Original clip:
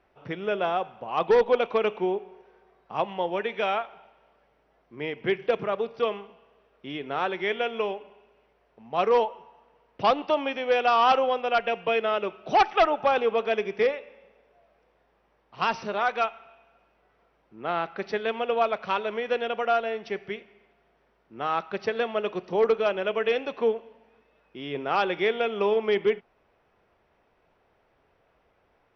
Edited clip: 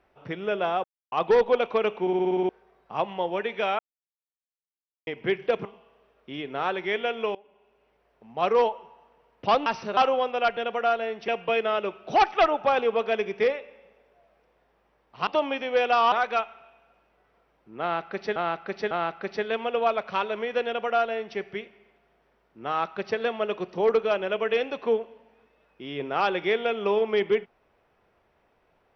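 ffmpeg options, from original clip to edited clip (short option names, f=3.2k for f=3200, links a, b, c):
-filter_complex "[0:a]asplit=23[a][b][c][d][e][f][g][h][i][j][k][l][m][n][o][p][q][r][s][t][u][v][w];[a]atrim=end=0.84,asetpts=PTS-STARTPTS,afade=t=out:st=0.836:d=0.004:c=hsin[x];[b]atrim=start=0.84:end=1.12,asetpts=PTS-STARTPTS,volume=0[y];[c]atrim=start=1.12:end=2.072,asetpts=PTS-STARTPTS,afade=t=in:d=0.004:c=hsin[z];[d]atrim=start=2.008:end=2.072[aa];[e]atrim=start=2.008:end=2.072[ab];[f]atrim=start=2.008:end=2.072[ac];[g]atrim=start=2.008:end=2.072[ad];[h]atrim=start=2.008:end=2.072[ae];[i]atrim=start=2.008:end=2.072[af];[j]atrim=start=2.008:end=2.072[ag];[k]atrim=start=2.488:end=3.79,asetpts=PTS-STARTPTS,afade=t=out:st=1.298:d=0.004:c=hsin[ah];[l]atrim=start=3.79:end=5.07,asetpts=PTS-STARTPTS,volume=0[ai];[m]atrim=start=5.07:end=5.652,asetpts=PTS-STARTPTS,afade=t=in:d=0.004:c=hsin[aj];[n]atrim=start=6.208:end=7.91,asetpts=PTS-STARTPTS,afade=t=out:st=1.698:d=0.004:c=hsin:silence=0.0944061[ak];[o]atrim=start=7.91:end=10.222,asetpts=PTS-STARTPTS,afade=t=in:d=1.07:c=qsin:silence=0.0944061[al];[p]atrim=start=15.658:end=15.972[am];[q]atrim=start=11.068:end=11.672[an];[r]atrim=start=19.408:end=20.122[ao];[s]atrim=start=11.668:end=15.662[ap];[t]atrim=start=10.218:end=11.072[aq];[u]atrim=start=15.968:end=18.212[ar];[v]atrim=start=17.658:end=18.212[as];[w]atrim=start=17.658[at];[x][y][z]concat=n=3:v=0:a=1[au];[au][aa]acrossfade=d=0.004:c1=hsin:c2=hsin[av];[av][ab]acrossfade=d=0.004:c1=hsin:c2=hsin[aw];[aw][ac]acrossfade=d=0.004:c1=hsin:c2=hsin[ax];[ax][ad]acrossfade=d=0.004:c1=hsin:c2=hsin[ay];[ay][ae]acrossfade=d=0.004:c1=hsin:c2=hsin[az];[az][af]acrossfade=d=0.004:c1=hsin:c2=hsin[ba];[ba][ag]acrossfade=d=0.004:c1=hsin:c2=hsin[bb];[ah][ai][aj]concat=n=3:v=0:a=1[bc];[bb][bc]acrossfade=d=0.004:c1=hsin:c2=hsin[bd];[ak][al]concat=n=2:v=0:a=1[be];[bd][be]acrossfade=d=0.004:c1=hsin:c2=hsin[bf];[bf][am]acrossfade=d=0.004:c1=hsin:c2=hsin[bg];[bg][an]acrossfade=d=0.004:c1=hsin:c2=hsin[bh];[bh][ao]acrossfade=d=0.004:c1=hsin:c2=hsin[bi];[bi][ap]acrossfade=d=0.004:c1=hsin:c2=hsin[bj];[bj][aq]acrossfade=d=0.004:c1=hsin:c2=hsin[bk];[bk][ar]acrossfade=d=0.004:c1=hsin:c2=hsin[bl];[bl][as]acrossfade=d=0.004:c1=hsin:c2=hsin[bm];[bm][at]acrossfade=d=0.004:c1=hsin:c2=hsin"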